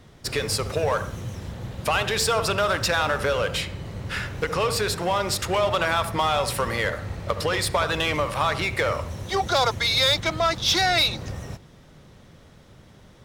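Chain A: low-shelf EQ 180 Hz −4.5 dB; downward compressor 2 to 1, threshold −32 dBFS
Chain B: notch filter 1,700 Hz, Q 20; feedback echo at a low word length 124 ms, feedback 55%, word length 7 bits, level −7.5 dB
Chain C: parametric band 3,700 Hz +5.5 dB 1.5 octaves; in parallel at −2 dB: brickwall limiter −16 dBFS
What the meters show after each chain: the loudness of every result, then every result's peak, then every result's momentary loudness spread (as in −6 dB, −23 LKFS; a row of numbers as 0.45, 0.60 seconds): −30.5, −23.0, −17.5 LKFS; −16.0, −9.0, −3.5 dBFS; 9, 12, 12 LU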